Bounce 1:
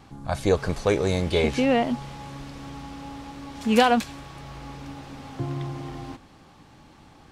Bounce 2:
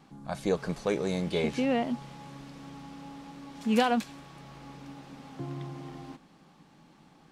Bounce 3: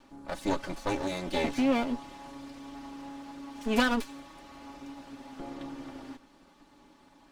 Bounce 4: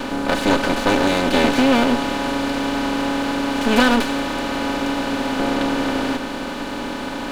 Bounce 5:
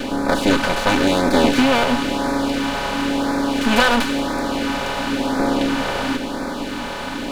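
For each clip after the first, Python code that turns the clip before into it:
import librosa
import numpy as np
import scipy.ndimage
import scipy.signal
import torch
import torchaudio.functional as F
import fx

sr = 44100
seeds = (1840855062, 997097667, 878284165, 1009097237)

y1 = fx.low_shelf_res(x, sr, hz=130.0, db=-7.0, q=3.0)
y1 = F.gain(torch.from_numpy(y1), -7.5).numpy()
y2 = fx.lower_of_two(y1, sr, delay_ms=3.4)
y2 = y2 + 0.43 * np.pad(y2, (int(7.2 * sr / 1000.0), 0))[:len(y2)]
y3 = fx.bin_compress(y2, sr, power=0.4)
y3 = F.gain(torch.from_numpy(y3), 7.5).numpy()
y4 = fx.filter_lfo_notch(y3, sr, shape='sine', hz=0.97, low_hz=260.0, high_hz=3000.0, q=1.4)
y4 = F.gain(torch.from_numpy(y4), 2.0).numpy()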